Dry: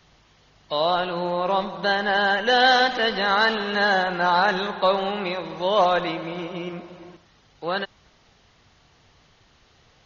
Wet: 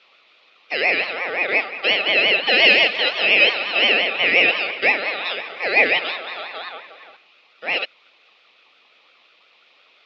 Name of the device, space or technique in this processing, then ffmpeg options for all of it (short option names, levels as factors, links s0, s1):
voice changer toy: -af "aeval=exprs='val(0)*sin(2*PI*1200*n/s+1200*0.2/5.7*sin(2*PI*5.7*n/s))':c=same,highpass=440,equalizer=f=510:t=q:w=4:g=3,equalizer=f=950:t=q:w=4:g=-9,equalizer=f=1600:t=q:w=4:g=-9,equalizer=f=2500:t=q:w=4:g=10,equalizer=f=3600:t=q:w=4:g=7,lowpass=f=4300:w=0.5412,lowpass=f=4300:w=1.3066,volume=1.68"